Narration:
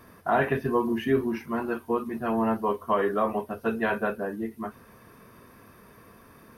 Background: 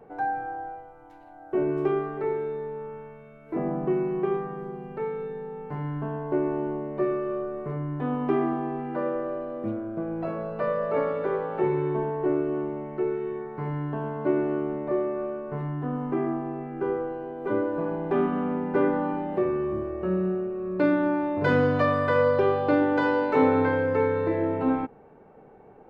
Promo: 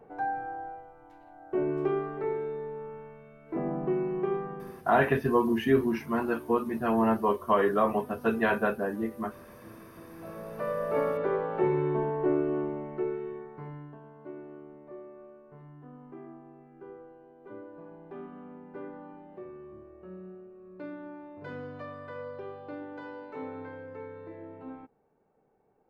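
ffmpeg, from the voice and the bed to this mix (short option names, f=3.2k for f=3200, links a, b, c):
-filter_complex "[0:a]adelay=4600,volume=0.5dB[a];[1:a]volume=15dB,afade=t=out:st=4.52:d=0.38:silence=0.149624,afade=t=in:st=10.09:d=1.01:silence=0.11885,afade=t=out:st=12.59:d=1.41:silence=0.133352[b];[a][b]amix=inputs=2:normalize=0"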